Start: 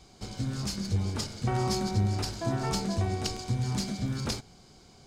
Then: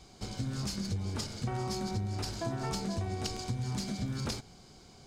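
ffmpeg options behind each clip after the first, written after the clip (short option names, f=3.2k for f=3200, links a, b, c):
-af "acompressor=threshold=-31dB:ratio=6"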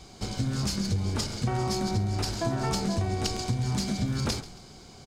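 -filter_complex "[0:a]asplit=4[a][b][c][d];[b]adelay=136,afreqshift=-58,volume=-17dB[e];[c]adelay=272,afreqshift=-116,volume=-26.4dB[f];[d]adelay=408,afreqshift=-174,volume=-35.7dB[g];[a][e][f][g]amix=inputs=4:normalize=0,volume=6.5dB"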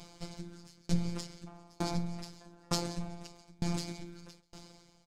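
-af "aeval=exprs='val(0)*sin(2*PI*75*n/s)':c=same,afftfilt=real='hypot(re,im)*cos(PI*b)':imag='0':win_size=1024:overlap=0.75,aeval=exprs='val(0)*pow(10,-32*if(lt(mod(1.1*n/s,1),2*abs(1.1)/1000),1-mod(1.1*n/s,1)/(2*abs(1.1)/1000),(mod(1.1*n/s,1)-2*abs(1.1)/1000)/(1-2*abs(1.1)/1000))/20)':c=same,volume=5.5dB"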